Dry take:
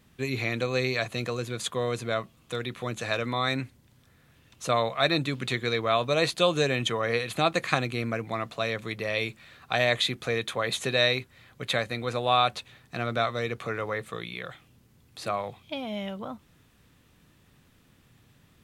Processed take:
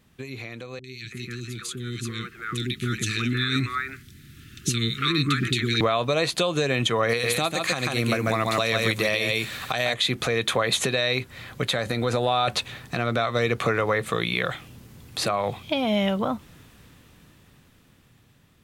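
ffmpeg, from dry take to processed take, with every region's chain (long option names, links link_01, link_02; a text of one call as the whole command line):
ffmpeg -i in.wav -filter_complex "[0:a]asettb=1/sr,asplit=3[link_01][link_02][link_03];[link_01]atrim=end=0.794[link_04];[link_02]atrim=start=0.79:end=5.81,asetpts=PTS-STARTPTS,afade=type=in:duration=0.004:curve=qsin,afade=type=out:start_time=5.016:duration=0.004:curve=qsin,asuperstop=centerf=710:order=12:qfactor=0.84,acompressor=threshold=-31dB:ratio=4:attack=3.2:release=140:knee=1:detection=peak,acrossover=split=510|2000[link_05][link_06][link_07];[link_07]adelay=50[link_08];[link_06]adelay=330[link_09];[link_05][link_09][link_08]amix=inputs=3:normalize=0,atrim=end_sample=221382[link_10];[link_03]atrim=start=5.806[link_11];[link_04][link_10]acrossfade=duration=0.004:curve1=hsin:curve2=qsin[link_12];[link_12][link_11]acrossfade=duration=0.004:curve1=qsin:curve2=hsin,asettb=1/sr,asplit=3[link_13][link_14][link_15];[link_13]atrim=end=7.094[link_16];[link_14]atrim=start=7.09:end=9.94,asetpts=PTS-STARTPTS,afade=type=in:duration=0.004:curve=qsin,afade=type=out:start_time=2.846:duration=0.004:curve=qsin,highshelf=frequency=4800:gain=12,aecho=1:1:143:0.562,atrim=end_sample=125685[link_17];[link_15]atrim=start=9.936[link_18];[link_16][link_17]acrossfade=duration=0.004:curve1=hsin:curve2=qsin[link_19];[link_19][link_18]acrossfade=duration=0.004:curve1=qsin:curve2=hsin,asettb=1/sr,asplit=3[link_20][link_21][link_22];[link_20]atrim=end=11.664[link_23];[link_21]atrim=start=11.66:end=12.48,asetpts=PTS-STARTPTS,afade=type=in:duration=0.004:curve=qsin,afade=type=out:start_time=0.816:duration=0.004:curve=qsin,equalizer=frequency=2400:width_type=o:width=0.74:gain=-4.5,bandreject=frequency=1100:width=13,acompressor=threshold=-32dB:ratio=4:attack=3.2:release=140:knee=1:detection=peak[link_24];[link_22]atrim=start=12.476[link_25];[link_23][link_24]acrossfade=duration=0.004:curve1=hsin:curve2=qsin[link_26];[link_26][link_25]acrossfade=duration=0.004:curve1=qsin:curve2=hsin,acompressor=threshold=-31dB:ratio=4,alimiter=level_in=1dB:limit=-24dB:level=0:latency=1:release=217,volume=-1dB,dynaudnorm=framelen=570:gausssize=9:maxgain=14dB" out.wav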